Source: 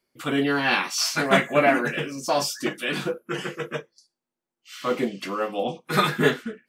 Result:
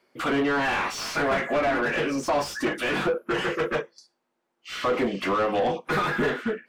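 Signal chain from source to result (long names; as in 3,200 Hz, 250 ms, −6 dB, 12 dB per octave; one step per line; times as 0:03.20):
dynamic equaliser 5,000 Hz, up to −4 dB, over −38 dBFS, Q 0.95
downward compressor 6 to 1, threshold −25 dBFS, peak gain reduction 11.5 dB
mid-hump overdrive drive 24 dB, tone 1,100 Hz, clips at −14 dBFS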